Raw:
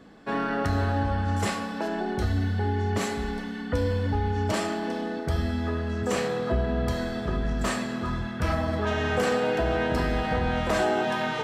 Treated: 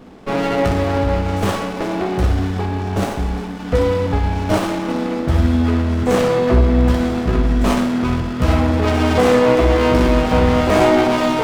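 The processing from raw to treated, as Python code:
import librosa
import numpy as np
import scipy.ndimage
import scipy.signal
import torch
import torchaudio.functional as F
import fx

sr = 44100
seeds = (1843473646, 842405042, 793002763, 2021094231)

p1 = fx.peak_eq(x, sr, hz=2600.0, db=-6.0, octaves=1.5, at=(2.61, 3.6))
p2 = p1 + fx.room_early_taps(p1, sr, ms=(16, 61), db=(-5.0, -4.5), dry=0)
p3 = fx.running_max(p2, sr, window=17)
y = p3 * 10.0 ** (9.0 / 20.0)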